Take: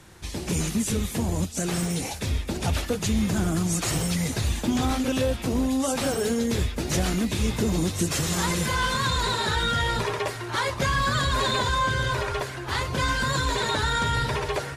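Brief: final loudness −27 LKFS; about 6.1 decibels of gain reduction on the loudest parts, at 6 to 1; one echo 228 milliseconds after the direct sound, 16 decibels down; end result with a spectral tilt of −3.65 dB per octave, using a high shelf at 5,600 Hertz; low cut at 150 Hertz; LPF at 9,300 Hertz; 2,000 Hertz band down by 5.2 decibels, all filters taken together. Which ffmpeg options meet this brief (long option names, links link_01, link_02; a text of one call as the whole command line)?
ffmpeg -i in.wav -af "highpass=150,lowpass=9300,equalizer=frequency=2000:width_type=o:gain=-7.5,highshelf=frequency=5600:gain=3.5,acompressor=threshold=-27dB:ratio=6,aecho=1:1:228:0.158,volume=3.5dB" out.wav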